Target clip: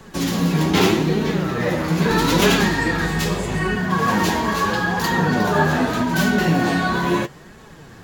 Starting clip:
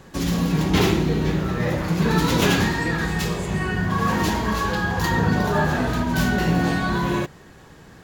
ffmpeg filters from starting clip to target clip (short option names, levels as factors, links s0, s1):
-filter_complex "[0:a]acrossover=split=160|700|5700[s0][s1][s2][s3];[s0]acompressor=threshold=0.0141:ratio=6[s4];[s4][s1][s2][s3]amix=inputs=4:normalize=0,flanger=delay=4.5:depth=8.2:regen=37:speed=0.79:shape=sinusoidal,asettb=1/sr,asplit=3[s5][s6][s7];[s5]atrim=end=2.104[s8];[s6]atrim=start=2.1:end=3.77,asetpts=PTS-STARTPTS,afade=t=in:d=0.004:c=qsin,afade=t=out:st=1.666:d=0.004:c=qsin,aeval=exprs='val(0)+0.0141*(sin(2*PI*50*n/s)+sin(2*PI*2*50*n/s)/2+sin(2*PI*3*50*n/s)/3+sin(2*PI*4*50*n/s)/4+sin(2*PI*5*50*n/s)/5)':c=same[s9];[s7]atrim=start=3.766[s10];[s8][s9]acrossfade=d=0.004:c1=hsin:c2=qsin[s11];[s11][s10]acrossfade=d=0.004:c1=qsin:c2=hsin,volume=2.37"